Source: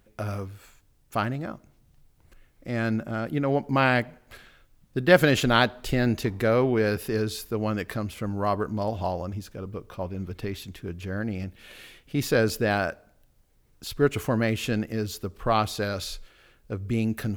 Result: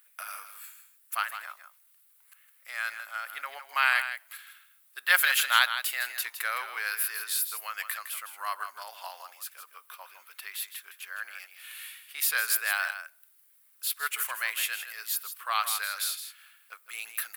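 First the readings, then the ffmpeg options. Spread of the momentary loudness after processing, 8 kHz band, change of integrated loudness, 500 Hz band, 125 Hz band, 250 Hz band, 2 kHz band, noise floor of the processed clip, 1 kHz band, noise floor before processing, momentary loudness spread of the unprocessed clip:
20 LU, +8.5 dB, −2.5 dB, −25.0 dB, below −40 dB, below −40 dB, +2.0 dB, −63 dBFS, −3.5 dB, −63 dBFS, 16 LU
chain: -af "highpass=frequency=1200:width=0.5412,highpass=frequency=1200:width=1.3066,highshelf=frequency=9900:gain=-6,aexciter=amount=5.8:drive=5.3:freq=8600,aecho=1:1:160:0.316,volume=2dB"

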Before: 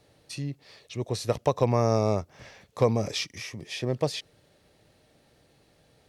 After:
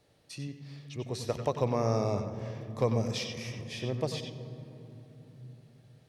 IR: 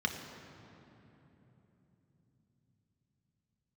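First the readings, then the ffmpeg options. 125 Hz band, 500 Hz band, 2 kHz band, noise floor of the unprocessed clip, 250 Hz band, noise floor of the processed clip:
−3.5 dB, −5.0 dB, −5.0 dB, −64 dBFS, −4.0 dB, −63 dBFS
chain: -filter_complex "[0:a]asplit=2[link_01][link_02];[1:a]atrim=start_sample=2205,adelay=92[link_03];[link_02][link_03]afir=irnorm=-1:irlink=0,volume=-11.5dB[link_04];[link_01][link_04]amix=inputs=2:normalize=0,volume=-6dB"

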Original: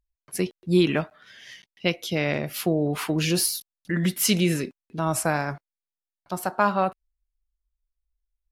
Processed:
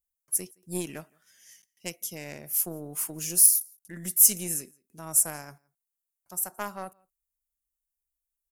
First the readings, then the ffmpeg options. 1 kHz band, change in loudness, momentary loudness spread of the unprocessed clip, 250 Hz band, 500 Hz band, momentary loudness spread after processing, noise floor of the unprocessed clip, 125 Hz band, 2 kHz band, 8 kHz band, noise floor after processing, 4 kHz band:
−14.5 dB, +1.5 dB, 13 LU, −15.5 dB, −15.0 dB, 22 LU, below −85 dBFS, −15.5 dB, −14.5 dB, +7.5 dB, below −85 dBFS, −11.0 dB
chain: -filter_complex "[0:a]asplit=2[link_01][link_02];[link_02]adelay=169.1,volume=-27dB,highshelf=frequency=4000:gain=-3.8[link_03];[link_01][link_03]amix=inputs=2:normalize=0,aeval=exprs='0.473*(cos(1*acos(clip(val(0)/0.473,-1,1)))-cos(1*PI/2))+0.0473*(cos(2*acos(clip(val(0)/0.473,-1,1)))-cos(2*PI/2))+0.075*(cos(3*acos(clip(val(0)/0.473,-1,1)))-cos(3*PI/2))':channel_layout=same,aexciter=amount=11.1:drive=8.3:freq=6000,volume=-11.5dB"

